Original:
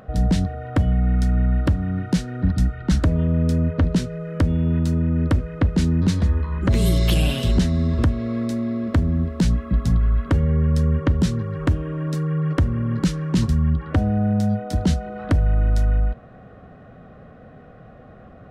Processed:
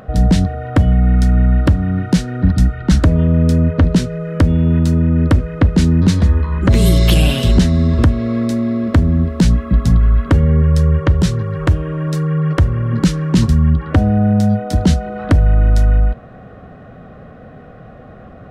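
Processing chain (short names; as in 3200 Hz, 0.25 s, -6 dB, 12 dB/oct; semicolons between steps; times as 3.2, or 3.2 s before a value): 10.62–12.93 bell 250 Hz -15 dB 0.31 oct; gain +7 dB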